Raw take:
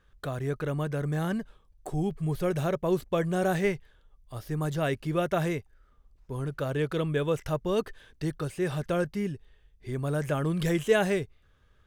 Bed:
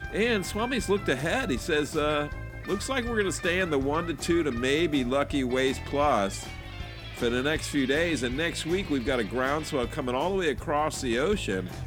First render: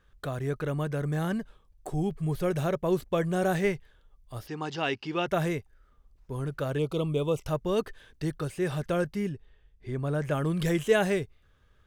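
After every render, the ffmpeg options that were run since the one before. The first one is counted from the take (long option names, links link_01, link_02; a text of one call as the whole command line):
ffmpeg -i in.wav -filter_complex "[0:a]asplit=3[link_01][link_02][link_03];[link_01]afade=type=out:start_time=4.46:duration=0.02[link_04];[link_02]highpass=140,equalizer=frequency=150:width_type=q:width=4:gain=-9,equalizer=frequency=590:width_type=q:width=4:gain=-9,equalizer=frequency=840:width_type=q:width=4:gain=9,equalizer=frequency=2800:width_type=q:width=4:gain=9,equalizer=frequency=5000:width_type=q:width=4:gain=9,lowpass=frequency=6200:width=0.5412,lowpass=frequency=6200:width=1.3066,afade=type=in:start_time=4.46:duration=0.02,afade=type=out:start_time=5.26:duration=0.02[link_05];[link_03]afade=type=in:start_time=5.26:duration=0.02[link_06];[link_04][link_05][link_06]amix=inputs=3:normalize=0,asettb=1/sr,asplit=3[link_07][link_08][link_09];[link_07]atrim=end=6.784[link_10];[link_08]atrim=start=6.78:end=7.47,asetpts=PTS-STARTPTS,afade=type=in:duration=0.004:curve=qsin,afade=type=out:start_time=0.686:duration=0.004:curve=qsin,asuperstop=centerf=1700:order=4:qfactor=1.4[link_11];[link_09]atrim=start=7.466[link_12];[link_10][link_11]acrossfade=duration=0.004:curve1=hsin:curve2=qsin[link_13];[link_13][link_12]acrossfade=duration=0.004:curve1=qsin:curve2=hsin,asettb=1/sr,asplit=3[link_14][link_15][link_16];[link_14]atrim=end=9.294[link_17];[link_15]atrim=start=9.29:end=10.31,asetpts=PTS-STARTPTS,afade=type=in:duration=0.004:curve=qsin,afade=type=out:start_time=1.016:duration=0.004:curve=qsin,lowpass=frequency=3500:poles=1[link_18];[link_16]atrim=start=10.306[link_19];[link_17][link_18]acrossfade=duration=0.004:curve1=hsin:curve2=qsin[link_20];[link_20][link_19]acrossfade=duration=0.004:curve1=qsin:curve2=hsin" out.wav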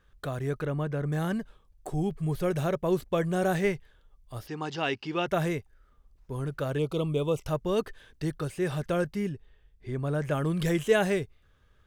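ffmpeg -i in.wav -filter_complex "[0:a]asettb=1/sr,asplit=3[link_01][link_02][link_03];[link_01]atrim=end=0.654[link_04];[link_02]atrim=start=0.65:end=1.12,asetpts=PTS-STARTPTS,afade=type=in:duration=0.004:curve=qsin,afade=type=out:start_time=0.466:duration=0.004:curve=qsin,highshelf=frequency=4400:gain=-11.5[link_05];[link_03]atrim=start=1.116[link_06];[link_04][link_05]acrossfade=duration=0.004:curve1=hsin:curve2=qsin[link_07];[link_07][link_06]acrossfade=duration=0.004:curve1=qsin:curve2=hsin" out.wav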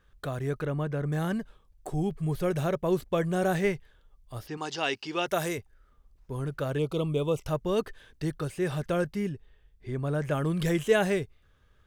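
ffmpeg -i in.wav -filter_complex "[0:a]asettb=1/sr,asplit=3[link_01][link_02][link_03];[link_01]atrim=end=4.574[link_04];[link_02]atrim=start=4.57:end=5.58,asetpts=PTS-STARTPTS,afade=type=in:duration=0.004:curve=qsin,afade=type=out:start_time=1.006:duration=0.004:curve=qsin,bass=frequency=250:gain=-8,treble=frequency=4000:gain=9[link_05];[link_03]atrim=start=5.576[link_06];[link_04][link_05]acrossfade=duration=0.004:curve1=hsin:curve2=qsin[link_07];[link_07][link_06]acrossfade=duration=0.004:curve1=qsin:curve2=hsin" out.wav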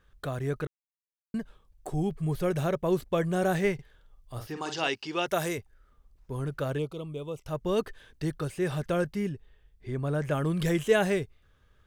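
ffmpeg -i in.wav -filter_complex "[0:a]asettb=1/sr,asplit=3[link_01][link_02][link_03];[link_01]atrim=end=3.744[link_04];[link_02]atrim=start=3.74:end=4.88,asetpts=PTS-STARTPTS,afade=type=in:duration=0.004:curve=qsin,afade=type=out:start_time=1.136:duration=0.004:curve=qsin,asplit=2[link_05][link_06];[link_06]adelay=49,volume=-7dB[link_07];[link_05][link_07]amix=inputs=2:normalize=0,atrim=end_sample=50274[link_08];[link_03]atrim=start=4.876[link_09];[link_04][link_08]acrossfade=duration=0.004:curve1=hsin:curve2=qsin[link_10];[link_10][link_09]acrossfade=duration=0.004:curve1=qsin:curve2=hsin,asplit=5[link_11][link_12][link_13][link_14][link_15];[link_11]atrim=end=0.67,asetpts=PTS-STARTPTS,afade=type=out:start_time=0.666:duration=0.004:curve=hsin[link_16];[link_12]atrim=start=0.67:end=1.34,asetpts=PTS-STARTPTS,volume=0[link_17];[link_13]atrim=start=1.34:end=6.95,asetpts=PTS-STARTPTS,afade=type=in:duration=0.004:curve=hsin,afade=type=out:start_time=5.37:duration=0.24:silence=0.354813[link_18];[link_14]atrim=start=6.95:end=7.43,asetpts=PTS-STARTPTS,volume=-9dB[link_19];[link_15]atrim=start=7.43,asetpts=PTS-STARTPTS,afade=type=in:duration=0.24:silence=0.354813[link_20];[link_16][link_17][link_18][link_19][link_20]concat=n=5:v=0:a=1" out.wav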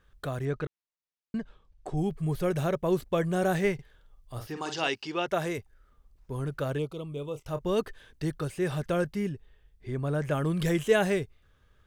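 ffmpeg -i in.wav -filter_complex "[0:a]asettb=1/sr,asplit=3[link_01][link_02][link_03];[link_01]atrim=end=0.454[link_04];[link_02]atrim=start=0.45:end=1.97,asetpts=PTS-STARTPTS,afade=type=in:duration=0.004:curve=qsin,afade=type=out:start_time=1.516:duration=0.004:curve=qsin,lowpass=5400[link_05];[link_03]atrim=start=1.966[link_06];[link_04][link_05]acrossfade=duration=0.004:curve1=hsin:curve2=qsin[link_07];[link_07][link_06]acrossfade=duration=0.004:curve1=qsin:curve2=hsin,asettb=1/sr,asplit=3[link_08][link_09][link_10];[link_08]atrim=end=5.124[link_11];[link_09]atrim=start=5.12:end=5.55,asetpts=PTS-STARTPTS,afade=type=in:duration=0.004:curve=qsin,afade=type=out:start_time=0.426:duration=0.004:curve=qsin,lowpass=frequency=3100:poles=1[link_12];[link_10]atrim=start=5.546[link_13];[link_11][link_12]acrossfade=duration=0.004:curve1=hsin:curve2=qsin[link_14];[link_14][link_13]acrossfade=duration=0.004:curve1=qsin:curve2=hsin,asettb=1/sr,asplit=3[link_15][link_16][link_17];[link_15]atrim=end=7.094[link_18];[link_16]atrim=start=7.09:end=7.68,asetpts=PTS-STARTPTS,afade=type=in:duration=0.004:curve=qsin,afade=type=out:start_time=0.586:duration=0.004:curve=qsin,asplit=2[link_19][link_20];[link_20]adelay=28,volume=-11.5dB[link_21];[link_19][link_21]amix=inputs=2:normalize=0,atrim=end_sample=26019[link_22];[link_17]atrim=start=7.676[link_23];[link_18][link_22]acrossfade=duration=0.004:curve1=hsin:curve2=qsin[link_24];[link_24][link_23]acrossfade=duration=0.004:curve1=qsin:curve2=hsin" out.wav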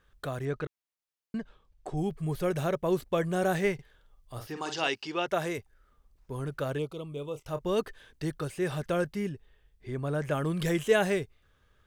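ffmpeg -i in.wav -af "lowshelf=frequency=220:gain=-4" out.wav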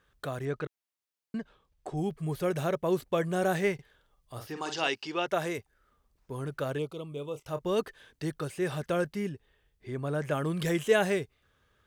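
ffmpeg -i in.wav -af "highpass=frequency=91:poles=1" out.wav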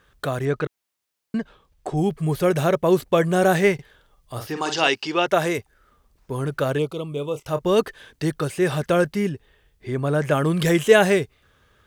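ffmpeg -i in.wav -af "volume=10dB" out.wav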